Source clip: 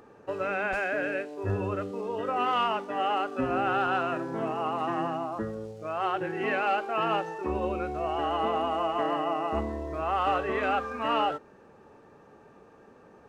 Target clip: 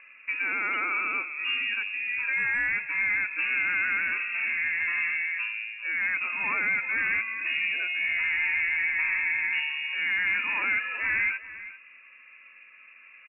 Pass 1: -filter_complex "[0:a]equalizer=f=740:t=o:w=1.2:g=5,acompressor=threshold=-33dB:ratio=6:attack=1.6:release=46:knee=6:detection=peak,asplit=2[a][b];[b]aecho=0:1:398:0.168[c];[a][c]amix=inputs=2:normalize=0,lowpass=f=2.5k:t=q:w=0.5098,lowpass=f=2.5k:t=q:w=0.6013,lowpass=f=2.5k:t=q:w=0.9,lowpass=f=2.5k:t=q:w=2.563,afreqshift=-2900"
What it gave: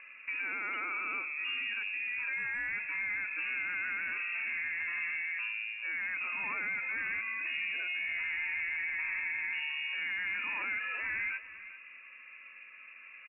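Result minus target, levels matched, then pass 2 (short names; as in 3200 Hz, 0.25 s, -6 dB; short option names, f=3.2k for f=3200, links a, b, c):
compressor: peak gain reduction +9.5 dB
-filter_complex "[0:a]equalizer=f=740:t=o:w=1.2:g=5,acompressor=threshold=-21.5dB:ratio=6:attack=1.6:release=46:knee=6:detection=peak,asplit=2[a][b];[b]aecho=0:1:398:0.168[c];[a][c]amix=inputs=2:normalize=0,lowpass=f=2.5k:t=q:w=0.5098,lowpass=f=2.5k:t=q:w=0.6013,lowpass=f=2.5k:t=q:w=0.9,lowpass=f=2.5k:t=q:w=2.563,afreqshift=-2900"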